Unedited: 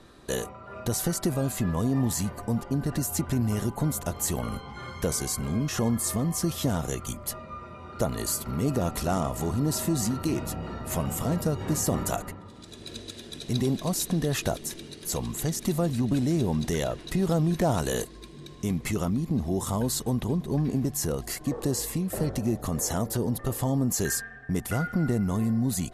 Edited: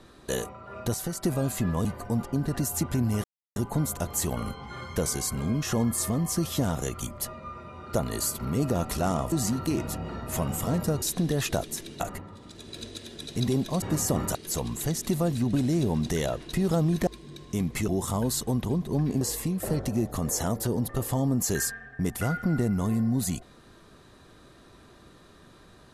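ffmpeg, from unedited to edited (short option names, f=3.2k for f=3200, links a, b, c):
-filter_complex "[0:a]asplit=13[a][b][c][d][e][f][g][h][i][j][k][l][m];[a]atrim=end=0.942[n];[b]atrim=start=0.938:end=1.242,asetpts=PTS-STARTPTS,volume=-5dB[o];[c]atrim=start=1.238:end=1.852[p];[d]atrim=start=2.228:end=3.62,asetpts=PTS-STARTPTS,afade=t=out:st=1.388:d=0.004:c=hsin,apad=pad_dur=0.32[q];[e]atrim=start=3.62:end=9.382,asetpts=PTS-STARTPTS,afade=t=in:d=0.004:c=hsin[r];[f]atrim=start=9.898:end=11.602[s];[g]atrim=start=13.948:end=14.932[t];[h]atrim=start=12.128:end=13.952[u];[i]atrim=start=11.598:end=12.132[v];[j]atrim=start=14.928:end=17.652[w];[k]atrim=start=18.168:end=18.982[x];[l]atrim=start=19.468:end=20.802[y];[m]atrim=start=21.708[z];[n][o]acrossfade=d=0.004:c1=hsin:c2=hsin[aa];[aa][p]acrossfade=d=0.004:c1=hsin:c2=hsin[ab];[q][r]concat=n=2:v=0:a=1[ac];[ab][ac]acrossfade=d=0.004:c1=hsin:c2=hsin[ad];[ad][s]acrossfade=d=0.004:c1=hsin:c2=hsin[ae];[ae][t]acrossfade=d=0.004:c1=hsin:c2=hsin[af];[af][u]acrossfade=d=0.004:c1=hsin:c2=hsin[ag];[ag][v]acrossfade=d=0.004:c1=hsin:c2=hsin[ah];[ah][w]acrossfade=d=0.004:c1=hsin:c2=hsin[ai];[ai][x]acrossfade=d=0.004:c1=hsin:c2=hsin[aj];[aj][y]acrossfade=d=0.004:c1=hsin:c2=hsin[ak];[ak][z]acrossfade=d=0.004:c1=hsin:c2=hsin"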